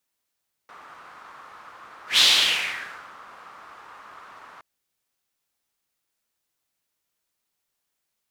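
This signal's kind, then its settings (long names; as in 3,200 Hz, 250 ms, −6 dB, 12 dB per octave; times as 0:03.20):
pass-by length 3.92 s, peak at 0:01.50, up 0.14 s, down 1.03 s, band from 1,200 Hz, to 3,700 Hz, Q 3.2, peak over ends 29.5 dB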